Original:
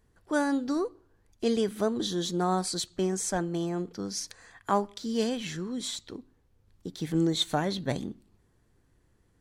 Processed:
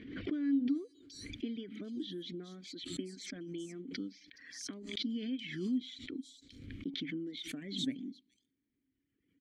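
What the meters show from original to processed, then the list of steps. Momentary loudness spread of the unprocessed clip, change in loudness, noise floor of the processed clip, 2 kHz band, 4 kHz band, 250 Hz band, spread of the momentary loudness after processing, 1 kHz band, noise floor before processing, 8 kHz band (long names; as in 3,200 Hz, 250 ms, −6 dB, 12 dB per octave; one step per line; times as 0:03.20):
11 LU, −9.5 dB, −83 dBFS, −9.0 dB, −8.0 dB, −6.0 dB, 12 LU, below −30 dB, −67 dBFS, −15.0 dB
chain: reverb reduction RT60 1.7 s
downward compressor 5 to 1, threshold −34 dBFS, peak gain reduction 13 dB
formant filter i
multiband delay without the direct sound lows, highs 420 ms, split 4,700 Hz
background raised ahead of every attack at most 58 dB per second
level +8 dB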